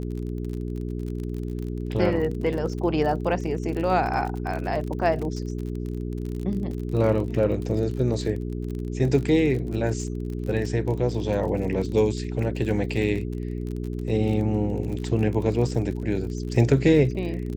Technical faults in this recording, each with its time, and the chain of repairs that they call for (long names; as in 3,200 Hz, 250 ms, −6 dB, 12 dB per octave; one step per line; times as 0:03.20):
surface crackle 36 per second −31 dBFS
mains hum 60 Hz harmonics 7 −30 dBFS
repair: click removal
hum removal 60 Hz, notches 7